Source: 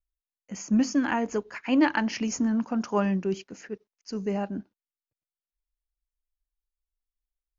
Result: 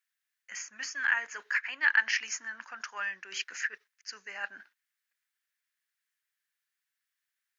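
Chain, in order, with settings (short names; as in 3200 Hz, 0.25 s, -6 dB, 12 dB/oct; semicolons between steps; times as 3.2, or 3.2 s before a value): reverse; compressor 6:1, threshold -36 dBFS, peak gain reduction 17.5 dB; reverse; resonant high-pass 1700 Hz, resonance Q 4.3; gain +8 dB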